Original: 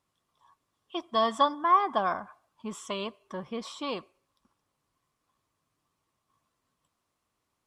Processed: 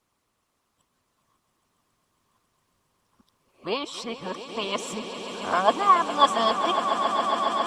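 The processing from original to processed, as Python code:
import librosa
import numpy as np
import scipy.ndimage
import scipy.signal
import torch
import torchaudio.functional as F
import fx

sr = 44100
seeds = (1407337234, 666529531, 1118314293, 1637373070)

y = x[::-1].copy()
y = fx.hpss(y, sr, part='harmonic', gain_db=-9)
y = fx.echo_swell(y, sr, ms=137, loudest=8, wet_db=-12)
y = F.gain(torch.from_numpy(y), 9.0).numpy()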